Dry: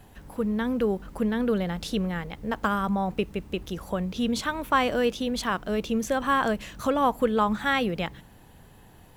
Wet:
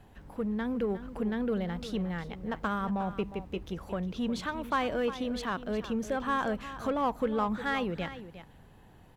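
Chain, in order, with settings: treble shelf 5.2 kHz -11 dB; in parallel at -3 dB: saturation -26 dBFS, distortion -9 dB; on the sum: delay 358 ms -13 dB; trim -8.5 dB

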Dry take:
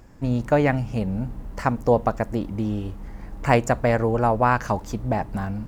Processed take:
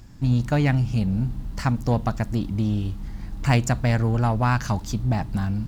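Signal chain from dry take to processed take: graphic EQ 125/500/1000/2000/4000 Hz +4/-11/-4/-4/+6 dB; in parallel at -7 dB: hard clipper -25.5 dBFS, distortion -6 dB

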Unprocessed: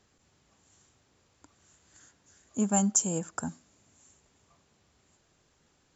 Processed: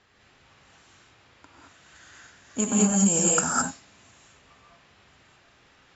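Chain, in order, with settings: 2.61–3.09 s: transient shaper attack +10 dB, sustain -11 dB; tilt shelf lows -6.5 dB, about 860 Hz; level-controlled noise filter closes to 2.8 kHz, open at -24.5 dBFS; compressor with a negative ratio -28 dBFS, ratio -1; gated-style reverb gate 240 ms rising, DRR -4.5 dB

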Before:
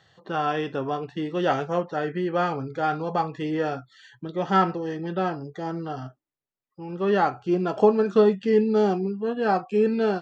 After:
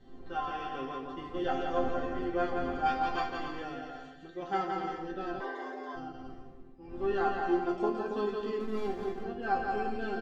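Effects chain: 2.85–3.25 s: spectral peaks clipped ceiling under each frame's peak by 21 dB; wind noise 270 Hz -37 dBFS; bouncing-ball echo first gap 170 ms, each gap 0.65×, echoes 5; on a send at -12.5 dB: reverberation RT60 1.4 s, pre-delay 73 ms; 5.40–5.95 s: on the sum: frequency shift +260 Hz; 8.60–9.23 s: hysteresis with a dead band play -18 dBFS; chord resonator C4 sus4, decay 0.23 s; trim +6 dB

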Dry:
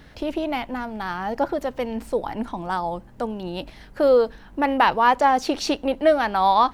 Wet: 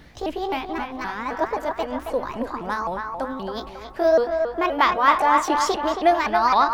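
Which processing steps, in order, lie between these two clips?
sawtooth pitch modulation +5 st, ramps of 261 ms; band-passed feedback delay 273 ms, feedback 54%, band-pass 1.2 kHz, level -3.5 dB

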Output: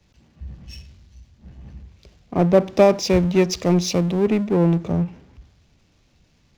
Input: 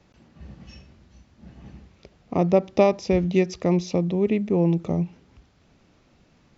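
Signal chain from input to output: band-stop 1.3 kHz, Q 17; power-law waveshaper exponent 0.7; three bands expanded up and down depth 70%; trim -1 dB

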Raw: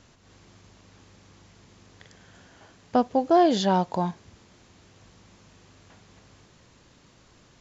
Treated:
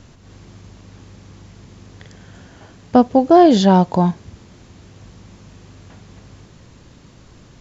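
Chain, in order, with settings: bass shelf 340 Hz +9 dB; trim +6 dB

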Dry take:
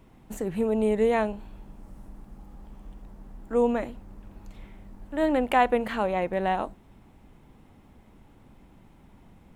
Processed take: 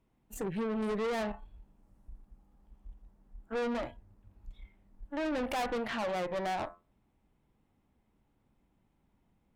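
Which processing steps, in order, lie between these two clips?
de-hum 86.9 Hz, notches 24; spectral noise reduction 17 dB; valve stage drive 32 dB, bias 0.6; trim +1.5 dB

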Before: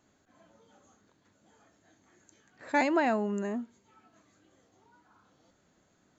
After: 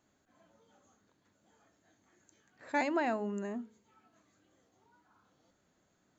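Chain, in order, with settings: de-hum 53.47 Hz, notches 9; trim -5 dB

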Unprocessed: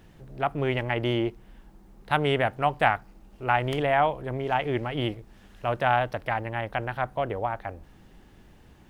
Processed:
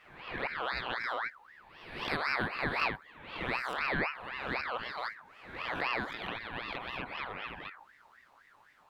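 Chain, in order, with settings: reverse spectral sustain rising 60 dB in 0.87 s; touch-sensitive flanger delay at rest 7.8 ms, full sweep at -19.5 dBFS; ring modulator with a swept carrier 1.4 kHz, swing 40%, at 3.9 Hz; trim -6 dB

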